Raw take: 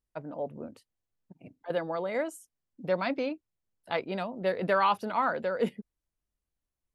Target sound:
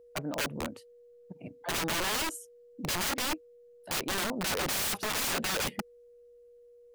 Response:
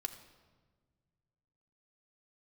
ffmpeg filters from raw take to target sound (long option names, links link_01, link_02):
-af "aeval=exprs='val(0)+0.00112*sin(2*PI*480*n/s)':channel_layout=same,aeval=exprs='(mod(37.6*val(0)+1,2)-1)/37.6':channel_layout=same,volume=5.5dB"